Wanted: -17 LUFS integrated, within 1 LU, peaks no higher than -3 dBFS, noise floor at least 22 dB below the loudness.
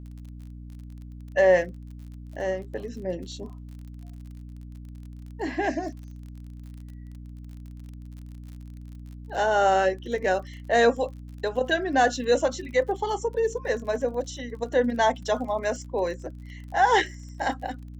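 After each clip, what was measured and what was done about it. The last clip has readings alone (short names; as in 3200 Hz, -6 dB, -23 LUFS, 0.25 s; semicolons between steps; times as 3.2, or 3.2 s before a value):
ticks 39/s; hum 60 Hz; harmonics up to 300 Hz; hum level -38 dBFS; loudness -25.5 LUFS; peak -9.0 dBFS; loudness target -17.0 LUFS
-> de-click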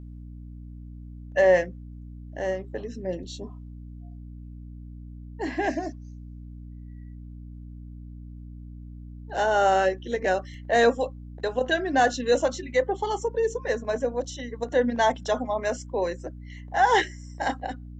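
ticks 0.056/s; hum 60 Hz; harmonics up to 300 Hz; hum level -39 dBFS
-> de-hum 60 Hz, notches 5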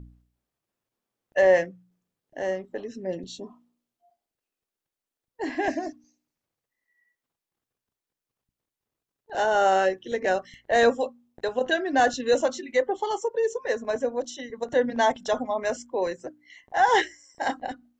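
hum none; loudness -25.5 LUFS; peak -9.0 dBFS; loudness target -17.0 LUFS
-> gain +8.5 dB; limiter -3 dBFS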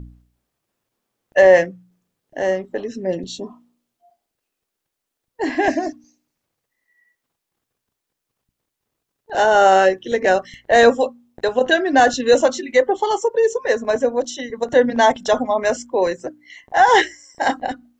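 loudness -17.5 LUFS; peak -3.0 dBFS; noise floor -81 dBFS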